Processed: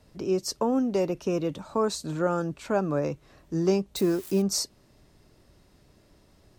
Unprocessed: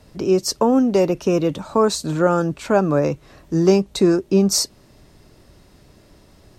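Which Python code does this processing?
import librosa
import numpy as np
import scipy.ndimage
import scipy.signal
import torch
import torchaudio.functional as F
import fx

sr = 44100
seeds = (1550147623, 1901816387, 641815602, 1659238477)

y = fx.crossing_spikes(x, sr, level_db=-22.5, at=(3.96, 4.42))
y = y * 10.0 ** (-9.0 / 20.0)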